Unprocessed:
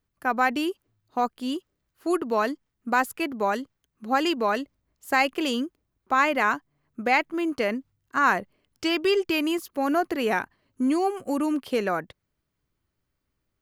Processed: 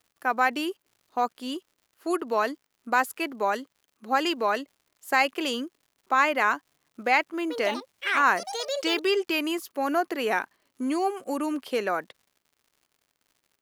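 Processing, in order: Bessel high-pass 350 Hz, order 2; crackle 140/s -51 dBFS; 7.37–9.48 echoes that change speed 0.131 s, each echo +6 st, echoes 2, each echo -6 dB

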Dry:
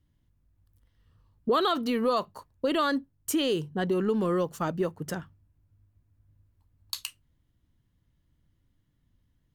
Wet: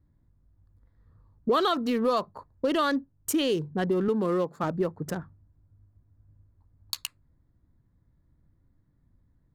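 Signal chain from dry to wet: Wiener smoothing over 15 samples; 4.08–4.64 HPF 170 Hz; in parallel at -3 dB: compressor, threshold -39 dBFS, peak gain reduction 16.5 dB

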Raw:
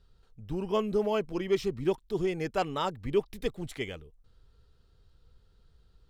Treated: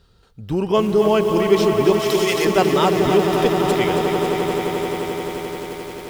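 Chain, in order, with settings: HPF 100 Hz 6 dB/oct; swelling echo 87 ms, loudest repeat 8, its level -13.5 dB; in parallel at -2 dB: limiter -24.5 dBFS, peak gain reduction 10.5 dB; 1.99–2.45 on the sum: tilt +4.5 dB/oct; lo-fi delay 0.273 s, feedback 80%, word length 7-bit, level -8 dB; gain +8 dB

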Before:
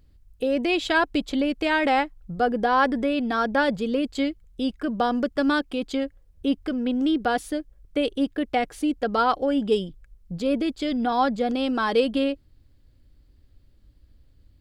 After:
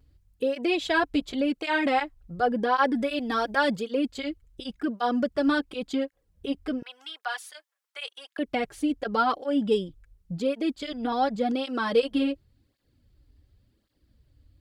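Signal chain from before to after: 2.95–3.82 high shelf 3600 Hz +7.5 dB; 6.82–8.39 HPF 900 Hz 24 dB/oct; tape flanging out of phase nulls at 0.9 Hz, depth 5.9 ms

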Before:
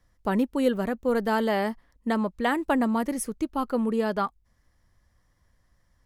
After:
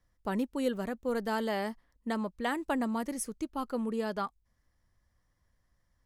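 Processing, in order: dynamic EQ 6700 Hz, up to +6 dB, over -51 dBFS, Q 0.72; gain -7.5 dB

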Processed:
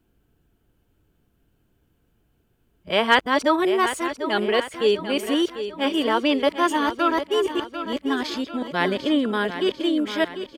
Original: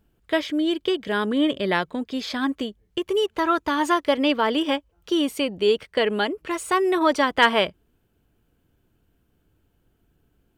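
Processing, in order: whole clip reversed; feedback echo 0.745 s, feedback 49%, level -10.5 dB

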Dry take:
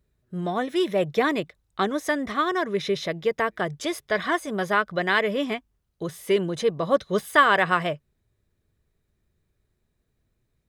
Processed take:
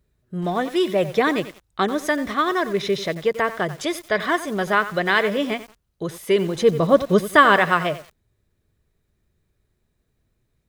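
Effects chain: 6.62–7.56 low shelf 380 Hz +8.5 dB; lo-fi delay 91 ms, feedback 35%, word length 6-bit, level -13 dB; gain +3 dB

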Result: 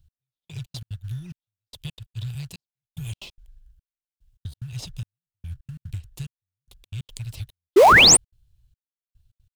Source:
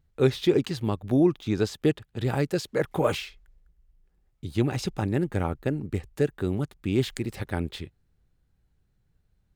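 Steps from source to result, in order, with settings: elliptic band-stop 120–2900 Hz, stop band 40 dB; compressor 6:1, threshold -38 dBFS, peak gain reduction 12 dB; step gate "x.....xx.x.xxxx" 182 bpm -60 dB; painted sound rise, 7.76–8.17, 340–9800 Hz -18 dBFS; in parallel at -10.5 dB: sample-rate reducer 1600 Hz, jitter 20%; on the sum: gain +6.5 dB

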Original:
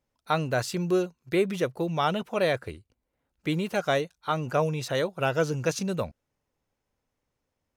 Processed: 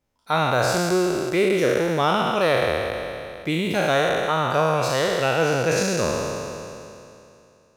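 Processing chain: spectral trails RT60 2.68 s; gain +1.5 dB

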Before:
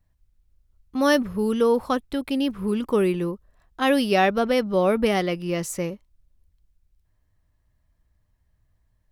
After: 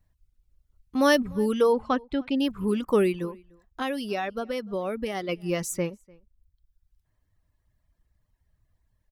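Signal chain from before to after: reverb removal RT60 1 s; 1.73–2.4 air absorption 150 m; 3.25–5.29 compressor 3:1, threshold -30 dBFS, peak gain reduction 11 dB; outdoor echo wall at 51 m, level -26 dB

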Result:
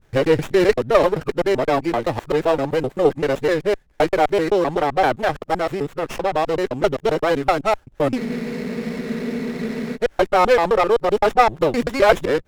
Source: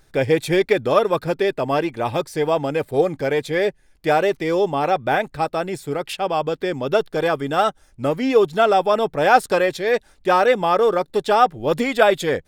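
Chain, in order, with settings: local time reversal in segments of 0.129 s; spectral freeze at 8.19, 1.76 s; running maximum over 9 samples; gain +1.5 dB

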